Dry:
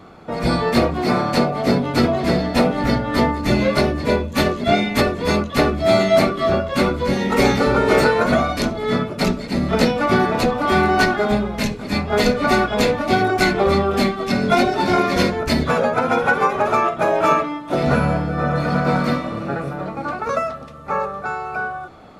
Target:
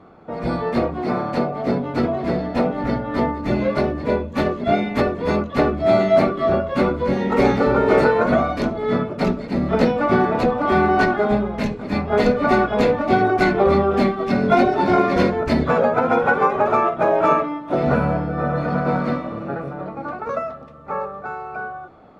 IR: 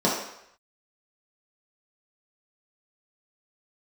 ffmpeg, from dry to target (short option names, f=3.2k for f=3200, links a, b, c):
-af "lowpass=f=1k:p=1,lowshelf=f=210:g=-6,dynaudnorm=f=430:g=21:m=11.5dB,volume=-1dB"